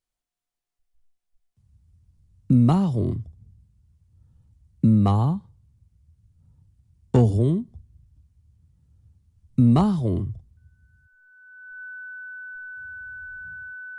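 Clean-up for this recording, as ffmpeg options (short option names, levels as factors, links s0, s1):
-af "bandreject=f=1500:w=30"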